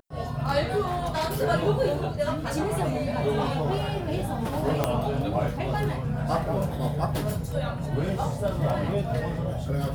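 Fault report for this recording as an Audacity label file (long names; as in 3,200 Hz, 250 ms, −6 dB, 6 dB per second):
0.890000	1.380000	clipping −23.5 dBFS
4.840000	4.840000	click −9 dBFS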